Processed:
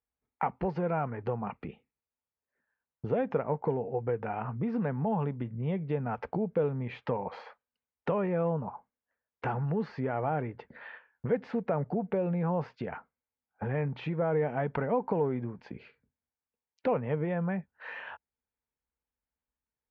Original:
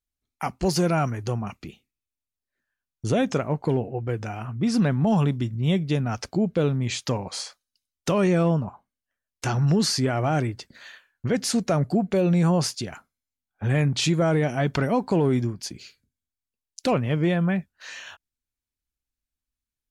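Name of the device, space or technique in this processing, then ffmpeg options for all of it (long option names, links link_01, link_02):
bass amplifier: -af "acompressor=threshold=-30dB:ratio=4,highpass=63,equalizer=frequency=100:width_type=q:width=4:gain=-9,equalizer=frequency=330:width_type=q:width=4:gain=-5,equalizer=frequency=470:width_type=q:width=4:gain=9,equalizer=frequency=880:width_type=q:width=4:gain=8,lowpass=frequency=2200:width=0.5412,lowpass=frequency=2200:width=1.3066"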